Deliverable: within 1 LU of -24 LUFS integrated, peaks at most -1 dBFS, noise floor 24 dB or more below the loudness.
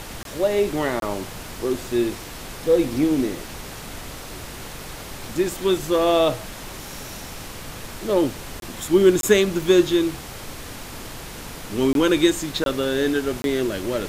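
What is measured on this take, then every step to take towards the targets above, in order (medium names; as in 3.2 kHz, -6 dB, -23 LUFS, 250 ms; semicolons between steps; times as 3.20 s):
dropouts 7; longest dropout 22 ms; noise floor -36 dBFS; noise floor target -46 dBFS; loudness -21.5 LUFS; peak level -3.5 dBFS; loudness target -24.0 LUFS
-> interpolate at 0.23/1.00/8.60/9.21/11.93/12.64/13.42 s, 22 ms; noise print and reduce 10 dB; trim -2.5 dB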